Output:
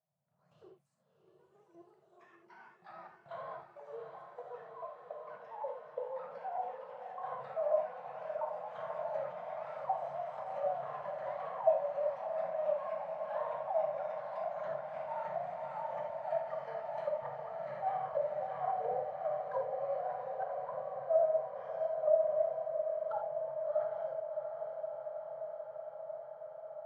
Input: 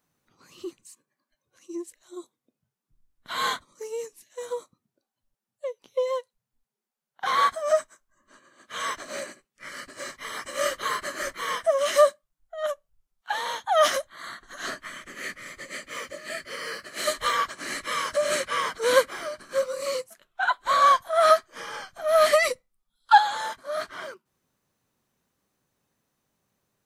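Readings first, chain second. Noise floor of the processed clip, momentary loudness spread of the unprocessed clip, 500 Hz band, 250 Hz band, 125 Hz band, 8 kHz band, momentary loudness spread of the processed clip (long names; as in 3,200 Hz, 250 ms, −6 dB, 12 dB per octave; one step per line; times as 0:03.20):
−68 dBFS, 20 LU, −7.0 dB, below −15 dB, can't be measured, below −40 dB, 14 LU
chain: in parallel at −5 dB: soft clipping −12 dBFS, distortion −16 dB
on the sum: output level in coarse steps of 10 dB
treble cut that deepens with the level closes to 380 Hz, closed at −21.5 dBFS
pair of resonant band-passes 300 Hz, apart 2.2 octaves
on a send: feedback delay with all-pass diffusion 719 ms, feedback 78%, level −7 dB
on the sum: delay with pitch and tempo change per echo 80 ms, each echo +3 semitones, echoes 3, each echo −6 dB
reverb whose tail is shaped and stops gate 110 ms flat, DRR 2 dB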